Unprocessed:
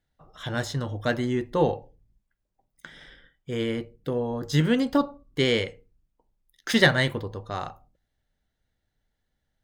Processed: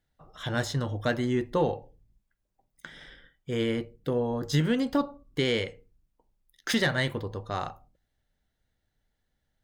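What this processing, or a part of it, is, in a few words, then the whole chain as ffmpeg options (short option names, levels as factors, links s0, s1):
soft clipper into limiter: -af "asoftclip=type=tanh:threshold=0.447,alimiter=limit=0.168:level=0:latency=1:release=330"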